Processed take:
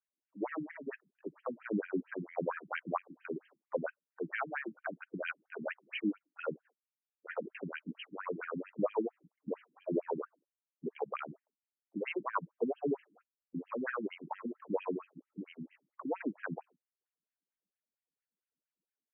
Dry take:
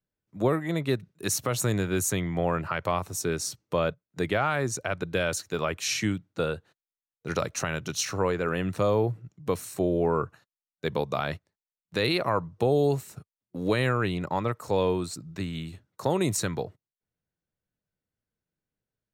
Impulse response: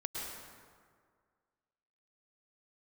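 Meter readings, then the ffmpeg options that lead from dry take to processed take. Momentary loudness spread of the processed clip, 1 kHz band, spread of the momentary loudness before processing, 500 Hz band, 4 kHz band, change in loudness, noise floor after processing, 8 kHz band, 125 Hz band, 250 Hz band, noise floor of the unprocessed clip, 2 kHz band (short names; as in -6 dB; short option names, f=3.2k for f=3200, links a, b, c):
11 LU, -10.5 dB, 9 LU, -11.0 dB, -20.0 dB, -11.5 dB, under -85 dBFS, under -40 dB, -20.0 dB, -9.0 dB, under -85 dBFS, -9.5 dB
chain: -af "aphaser=in_gain=1:out_gain=1:delay=4.5:decay=0.38:speed=1.7:type=sinusoidal,afftfilt=real='re*between(b*sr/1024,230*pow(2300/230,0.5+0.5*sin(2*PI*4.4*pts/sr))/1.41,230*pow(2300/230,0.5+0.5*sin(2*PI*4.4*pts/sr))*1.41)':imag='im*between(b*sr/1024,230*pow(2300/230,0.5+0.5*sin(2*PI*4.4*pts/sr))/1.41,230*pow(2300/230,0.5+0.5*sin(2*PI*4.4*pts/sr))*1.41)':win_size=1024:overlap=0.75,volume=-4dB"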